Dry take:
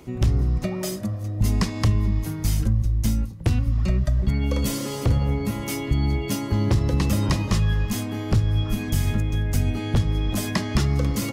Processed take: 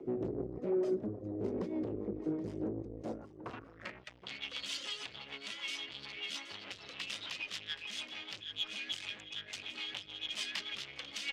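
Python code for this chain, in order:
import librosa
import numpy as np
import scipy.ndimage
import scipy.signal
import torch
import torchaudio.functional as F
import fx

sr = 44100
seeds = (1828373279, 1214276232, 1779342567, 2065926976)

p1 = scipy.signal.sosfilt(scipy.signal.butter(6, 9000.0, 'lowpass', fs=sr, output='sos'), x)
p2 = fx.dereverb_blind(p1, sr, rt60_s=0.95)
p3 = fx.highpass(p2, sr, hz=60.0, slope=6)
p4 = fx.low_shelf(p3, sr, hz=80.0, db=-6.0)
p5 = fx.tube_stage(p4, sr, drive_db=35.0, bias=0.7)
p6 = fx.rotary(p5, sr, hz=6.7)
p7 = fx.filter_sweep_bandpass(p6, sr, from_hz=390.0, to_hz=3100.0, start_s=2.82, end_s=4.19, q=2.6)
p8 = fx.cheby_harmonics(p7, sr, harmonics=(6,), levels_db=(-38,), full_scale_db=-36.0)
p9 = p8 + fx.echo_single(p8, sr, ms=775, db=-13.5, dry=0)
y = p9 * librosa.db_to_amplitude(12.0)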